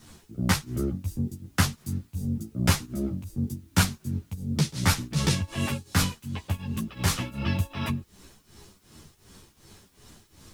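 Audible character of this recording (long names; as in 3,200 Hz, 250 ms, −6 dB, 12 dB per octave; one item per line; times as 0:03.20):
tremolo triangle 2.7 Hz, depth 95%
a quantiser's noise floor 12 bits, dither triangular
a shimmering, thickened sound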